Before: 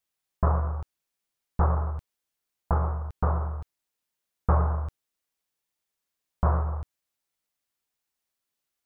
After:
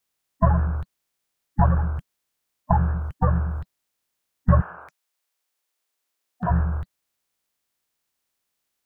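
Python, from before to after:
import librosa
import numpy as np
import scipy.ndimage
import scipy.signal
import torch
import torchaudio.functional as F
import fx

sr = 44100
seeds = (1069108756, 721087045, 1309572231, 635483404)

y = fx.spec_quant(x, sr, step_db=30)
y = fx.highpass(y, sr, hz=fx.line((4.6, 750.0), (6.49, 220.0)), slope=12, at=(4.6, 6.49), fade=0.02)
y = F.gain(torch.from_numpy(y), 6.0).numpy()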